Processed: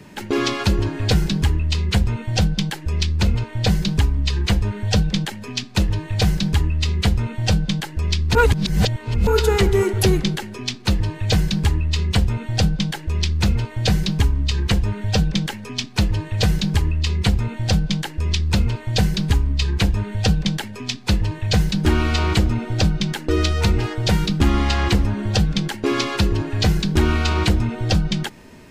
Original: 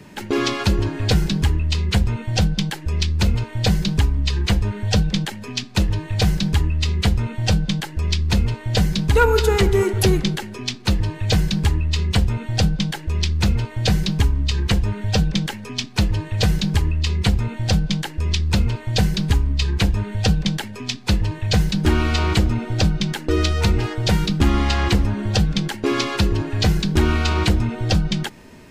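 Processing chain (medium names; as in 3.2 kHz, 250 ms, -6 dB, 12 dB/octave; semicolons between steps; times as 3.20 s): 3.16–3.69 s: treble shelf 7.7 kHz -5 dB; 8.35–9.27 s: reverse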